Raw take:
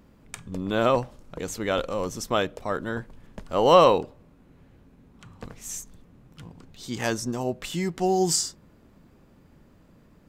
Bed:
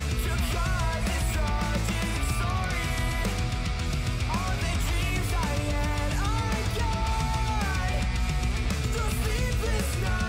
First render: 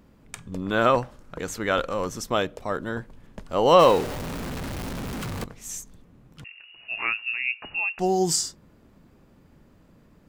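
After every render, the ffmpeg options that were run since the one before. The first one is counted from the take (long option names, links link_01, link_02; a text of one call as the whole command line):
ffmpeg -i in.wav -filter_complex "[0:a]asettb=1/sr,asplit=3[link_01][link_02][link_03];[link_01]atrim=end=0.624[link_04];[link_02]atrim=start=0.62:end=2.21,asetpts=PTS-STARTPTS,afade=type=in:duration=0.004:curve=qsin,afade=type=out:start_time=1.586:duration=0.004:curve=qsin,equalizer=frequency=1500:width=1.5:gain=6.5[link_05];[link_03]atrim=start=2.206[link_06];[link_04][link_05]acrossfade=duration=0.004:curve1=hsin:curve2=qsin[link_07];[link_07][link_06]acrossfade=duration=0.004:curve1=qsin:curve2=hsin,asettb=1/sr,asplit=3[link_08][link_09][link_10];[link_08]atrim=end=3.794[link_11];[link_09]atrim=start=3.79:end=5.44,asetpts=PTS-STARTPTS,afade=type=in:duration=0.004:curve=qsin,afade=type=out:start_time=1.646:duration=0.004:curve=qsin,aeval=exprs='val(0)+0.5*0.0473*sgn(val(0))':channel_layout=same[link_12];[link_10]atrim=start=5.436[link_13];[link_11][link_12]acrossfade=duration=0.004:curve1=hsin:curve2=qsin[link_14];[link_14][link_13]acrossfade=duration=0.004:curve1=qsin:curve2=hsin,asettb=1/sr,asplit=3[link_15][link_16][link_17];[link_15]atrim=end=6.444[link_18];[link_16]atrim=start=6.44:end=7.99,asetpts=PTS-STARTPTS,afade=type=in:duration=0.004:curve=qsin,afade=type=out:start_time=1.546:duration=0.004:curve=qsin,lowpass=frequency=2500:width_type=q:width=0.5098,lowpass=frequency=2500:width_type=q:width=0.6013,lowpass=frequency=2500:width_type=q:width=0.9,lowpass=frequency=2500:width_type=q:width=2.563,afreqshift=-2900[link_19];[link_17]atrim=start=7.986[link_20];[link_18][link_19]acrossfade=duration=0.004:curve1=hsin:curve2=qsin[link_21];[link_21][link_20]acrossfade=duration=0.004:curve1=qsin:curve2=hsin" out.wav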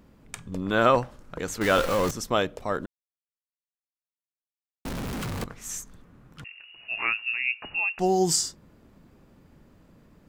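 ffmpeg -i in.wav -filter_complex "[0:a]asettb=1/sr,asplit=3[link_01][link_02][link_03];[link_01]atrim=end=1.614[link_04];[link_02]atrim=start=1.61:end=2.11,asetpts=PTS-STARTPTS,afade=type=in:duration=0.004:curve=qsin,afade=type=out:start_time=0.496:duration=0.004:curve=qsin,aeval=exprs='val(0)+0.5*0.0531*sgn(val(0))':channel_layout=same[link_05];[link_03]atrim=start=2.106[link_06];[link_04][link_05]acrossfade=duration=0.004:curve1=hsin:curve2=qsin[link_07];[link_07][link_06]acrossfade=duration=0.004:curve1=qsin:curve2=hsin,asettb=1/sr,asplit=3[link_08][link_09][link_10];[link_08]atrim=end=5.464[link_11];[link_09]atrim=start=5.46:end=6.43,asetpts=PTS-STARTPTS,afade=type=in:duration=0.004:curve=qsin,afade=type=out:start_time=0.966:duration=0.004:curve=qsin,equalizer=frequency=1400:width_type=o:width=1:gain=7[link_12];[link_10]atrim=start=6.426[link_13];[link_11][link_12]acrossfade=duration=0.004:curve1=hsin:curve2=qsin[link_14];[link_14][link_13]acrossfade=duration=0.004:curve1=qsin:curve2=hsin,asplit=3[link_15][link_16][link_17];[link_15]atrim=end=2.86,asetpts=PTS-STARTPTS,afade=type=out:start_time=2.856:duration=0.004:curve=hsin[link_18];[link_16]atrim=start=2.86:end=4.85,asetpts=PTS-STARTPTS,volume=0[link_19];[link_17]atrim=start=4.85,asetpts=PTS-STARTPTS,afade=type=in:duration=0.004:curve=hsin[link_20];[link_18][link_19][link_20]concat=n=3:v=0:a=1" out.wav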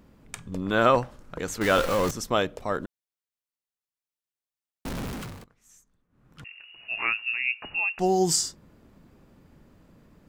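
ffmpeg -i in.wav -filter_complex "[0:a]asplit=3[link_01][link_02][link_03];[link_01]atrim=end=5.46,asetpts=PTS-STARTPTS,afade=type=out:start_time=5.03:duration=0.43:silence=0.0841395[link_04];[link_02]atrim=start=5.46:end=6.09,asetpts=PTS-STARTPTS,volume=-21.5dB[link_05];[link_03]atrim=start=6.09,asetpts=PTS-STARTPTS,afade=type=in:duration=0.43:silence=0.0841395[link_06];[link_04][link_05][link_06]concat=n=3:v=0:a=1" out.wav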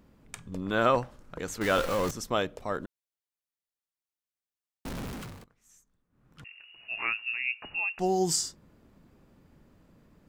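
ffmpeg -i in.wav -af "volume=-4dB" out.wav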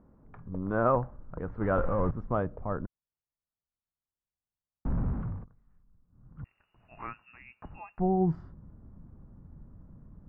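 ffmpeg -i in.wav -af "lowpass=frequency=1300:width=0.5412,lowpass=frequency=1300:width=1.3066,asubboost=boost=4.5:cutoff=180" out.wav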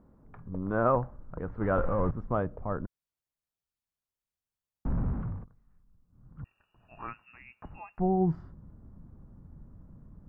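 ffmpeg -i in.wav -filter_complex "[0:a]asettb=1/sr,asplit=3[link_01][link_02][link_03];[link_01]atrim=end=6.404[link_04];[link_02]atrim=start=6.4:end=7.08,asetpts=PTS-STARTPTS,afade=type=in:duration=0.004:curve=qsin,afade=type=out:start_time=0.676:duration=0.004:curve=qsin,asuperstop=centerf=2100:order=12:qfactor=5.1[link_05];[link_03]atrim=start=7.076[link_06];[link_04][link_05]acrossfade=duration=0.004:curve1=hsin:curve2=qsin[link_07];[link_07][link_06]acrossfade=duration=0.004:curve1=qsin:curve2=hsin" out.wav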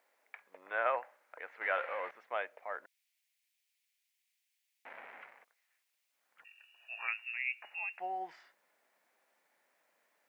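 ffmpeg -i in.wav -af "highpass=frequency=670:width=0.5412,highpass=frequency=670:width=1.3066,highshelf=frequency=1600:width_type=q:width=3:gain=10.5" out.wav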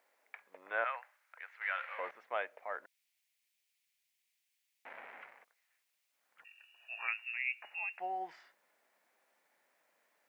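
ffmpeg -i in.wav -filter_complex "[0:a]asettb=1/sr,asplit=3[link_01][link_02][link_03];[link_01]atrim=end=0.844[link_04];[link_02]atrim=start=0.84:end=1.99,asetpts=PTS-STARTPTS,afade=type=in:duration=0.004:curve=qsin,afade=type=out:start_time=1.146:duration=0.004:curve=qsin,highpass=1400[link_05];[link_03]atrim=start=1.986[link_06];[link_04][link_05]acrossfade=duration=0.004:curve1=hsin:curve2=qsin[link_07];[link_07][link_06]acrossfade=duration=0.004:curve1=qsin:curve2=hsin" out.wav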